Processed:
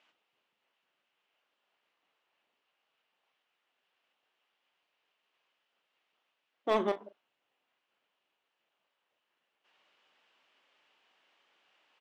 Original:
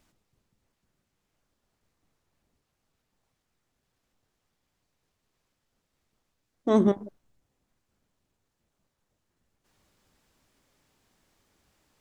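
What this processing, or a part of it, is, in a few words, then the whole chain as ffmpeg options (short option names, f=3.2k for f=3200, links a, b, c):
megaphone: -filter_complex "[0:a]highpass=630,lowpass=3k,equalizer=f=2.9k:t=o:w=0.53:g=10,asoftclip=type=hard:threshold=-21dB,asplit=2[a][b];[b]adelay=38,volume=-13dB[c];[a][c]amix=inputs=2:normalize=0,volume=1.5dB"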